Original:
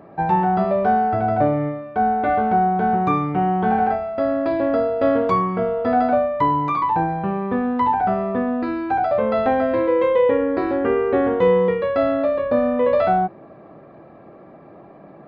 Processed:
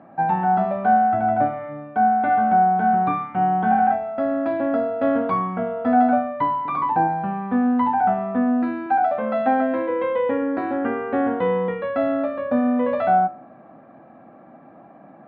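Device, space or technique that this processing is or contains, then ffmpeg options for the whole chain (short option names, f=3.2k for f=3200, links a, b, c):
guitar cabinet: -filter_complex "[0:a]asettb=1/sr,asplit=3[a][b][c];[a]atrim=end=6.654[d];[b]atrim=start=6.65:end=7.08,asetpts=PTS-STARTPTS,afade=t=in:d=0.004:c=qsin,afade=t=out:st=0.426:d=0.004:c=qsin,equalizer=f=420:t=o:w=1.1:g=6[e];[c]atrim=start=7.076[f];[d][e]acrossfade=d=0.004:c1=hsin:c2=qsin[g];[g][f]acrossfade=d=0.004:c1=qsin:c2=hsin,highpass=110,equalizer=f=250:t=q:w=4:g=9,equalizer=f=400:t=q:w=4:g=-9,equalizer=f=760:t=q:w=4:g=7,equalizer=f=1.5k:t=q:w=4:g=6,lowpass=f=3.6k:w=0.5412,lowpass=f=3.6k:w=1.3066,bandreject=f=146.8:t=h:w=4,bandreject=f=293.6:t=h:w=4,bandreject=f=440.4:t=h:w=4,bandreject=f=587.2:t=h:w=4,bandreject=f=734:t=h:w=4,bandreject=f=880.8:t=h:w=4,bandreject=f=1.0276k:t=h:w=4,bandreject=f=1.1744k:t=h:w=4,bandreject=f=1.3212k:t=h:w=4,bandreject=f=1.468k:t=h:w=4,bandreject=f=1.6148k:t=h:w=4,bandreject=f=1.7616k:t=h:w=4,bandreject=f=1.9084k:t=h:w=4,bandreject=f=2.0552k:t=h:w=4,bandreject=f=2.202k:t=h:w=4,bandreject=f=2.3488k:t=h:w=4,bandreject=f=2.4956k:t=h:w=4,bandreject=f=2.6424k:t=h:w=4,bandreject=f=2.7892k:t=h:w=4,bandreject=f=2.936k:t=h:w=4,bandreject=f=3.0828k:t=h:w=4,bandreject=f=3.2296k:t=h:w=4,bandreject=f=3.3764k:t=h:w=4,bandreject=f=3.5232k:t=h:w=4,bandreject=f=3.67k:t=h:w=4,bandreject=f=3.8168k:t=h:w=4,bandreject=f=3.9636k:t=h:w=4,bandreject=f=4.1104k:t=h:w=4,asettb=1/sr,asplit=3[h][i][j];[h]atrim=end=8.864[k];[i]atrim=start=8.86:end=9.9,asetpts=PTS-STARTPTS,afade=t=in:d=0.004:c=qsin,afade=t=out:st=1.036:d=0.004:c=qsin,highpass=180[l];[j]atrim=start=9.896[m];[k][l]acrossfade=d=0.004:c1=hsin:c2=qsin[n];[n][m]acrossfade=d=0.004:c1=qsin:c2=hsin,volume=-4.5dB"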